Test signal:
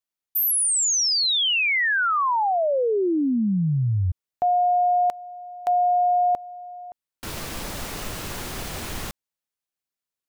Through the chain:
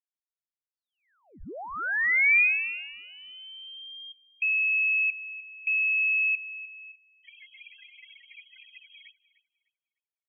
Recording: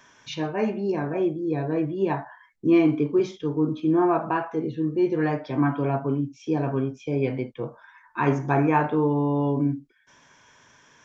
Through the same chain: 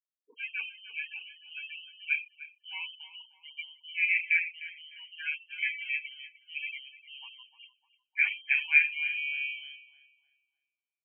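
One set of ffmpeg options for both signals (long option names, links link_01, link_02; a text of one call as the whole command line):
ffmpeg -i in.wav -filter_complex "[0:a]afftfilt=real='re*gte(hypot(re,im),0.0562)':imag='im*gte(hypot(re,im),0.0562)':win_size=1024:overlap=0.75,lowshelf=frequency=590:width_type=q:width=3:gain=-14,lowpass=frequency=2800:width_type=q:width=0.5098,lowpass=frequency=2800:width_type=q:width=0.6013,lowpass=frequency=2800:width_type=q:width=0.9,lowpass=frequency=2800:width_type=q:width=2.563,afreqshift=-3300,equalizer=frequency=125:width_type=o:width=1:gain=-11,equalizer=frequency=500:width_type=o:width=1:gain=-6,equalizer=frequency=1000:width_type=o:width=1:gain=-10,equalizer=frequency=2000:width_type=o:width=1:gain=4,asplit=2[link_01][link_02];[link_02]adelay=302,lowpass=frequency=1300:poles=1,volume=-10.5dB,asplit=2[link_03][link_04];[link_04]adelay=302,lowpass=frequency=1300:poles=1,volume=0.52,asplit=2[link_05][link_06];[link_06]adelay=302,lowpass=frequency=1300:poles=1,volume=0.52,asplit=2[link_07][link_08];[link_08]adelay=302,lowpass=frequency=1300:poles=1,volume=0.52,asplit=2[link_09][link_10];[link_10]adelay=302,lowpass=frequency=1300:poles=1,volume=0.52,asplit=2[link_11][link_12];[link_12]adelay=302,lowpass=frequency=1300:poles=1,volume=0.52[link_13];[link_03][link_05][link_07][link_09][link_11][link_13]amix=inputs=6:normalize=0[link_14];[link_01][link_14]amix=inputs=2:normalize=0,volume=-7.5dB" out.wav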